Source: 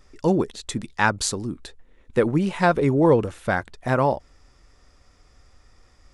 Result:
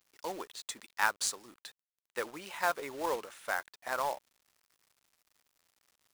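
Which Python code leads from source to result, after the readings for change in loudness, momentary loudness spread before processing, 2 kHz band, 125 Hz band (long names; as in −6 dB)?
−13.0 dB, 12 LU, −8.0 dB, −35.5 dB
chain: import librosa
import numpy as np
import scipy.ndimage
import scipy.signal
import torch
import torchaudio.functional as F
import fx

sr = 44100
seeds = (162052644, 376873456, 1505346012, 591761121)

y = scipy.signal.sosfilt(scipy.signal.butter(2, 900.0, 'highpass', fs=sr, output='sos'), x)
y = fx.dynamic_eq(y, sr, hz=2800.0, q=0.85, threshold_db=-40.0, ratio=4.0, max_db=-3)
y = fx.quant_companded(y, sr, bits=4)
y = F.gain(torch.from_numpy(y), -6.5).numpy()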